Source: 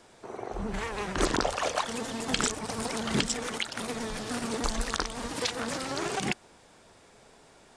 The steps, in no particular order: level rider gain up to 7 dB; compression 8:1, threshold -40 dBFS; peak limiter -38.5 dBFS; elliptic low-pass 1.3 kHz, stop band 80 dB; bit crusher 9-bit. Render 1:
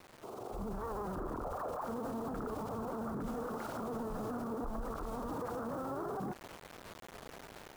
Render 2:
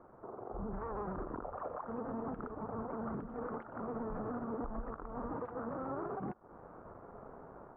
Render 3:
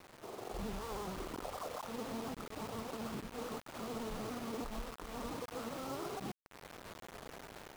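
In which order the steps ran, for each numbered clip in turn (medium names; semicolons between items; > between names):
elliptic low-pass > bit crusher > peak limiter > compression > level rider; bit crusher > compression > elliptic low-pass > peak limiter > level rider; compression > peak limiter > elliptic low-pass > bit crusher > level rider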